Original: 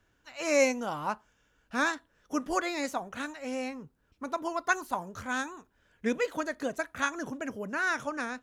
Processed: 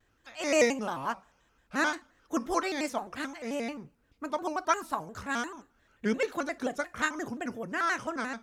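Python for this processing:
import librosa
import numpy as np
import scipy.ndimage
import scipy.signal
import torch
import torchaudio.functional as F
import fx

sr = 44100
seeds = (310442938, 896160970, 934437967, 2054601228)

y = fx.rev_double_slope(x, sr, seeds[0], early_s=0.35, late_s=1.7, knee_db=-26, drr_db=15.5)
y = fx.vibrato_shape(y, sr, shape='square', rate_hz=5.7, depth_cents=160.0)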